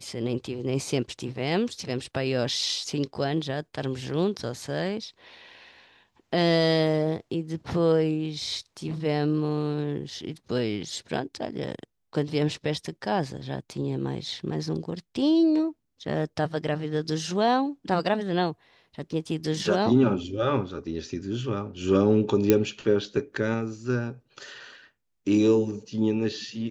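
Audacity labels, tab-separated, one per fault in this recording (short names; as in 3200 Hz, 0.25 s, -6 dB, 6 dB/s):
22.500000	22.500000	pop -5 dBFS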